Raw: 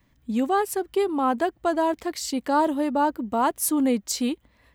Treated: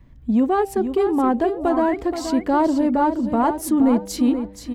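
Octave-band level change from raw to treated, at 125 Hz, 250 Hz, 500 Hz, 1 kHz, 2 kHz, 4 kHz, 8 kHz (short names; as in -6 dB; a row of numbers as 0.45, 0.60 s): n/a, +7.0 dB, +4.0 dB, +2.0 dB, 0.0 dB, -2.5 dB, -5.0 dB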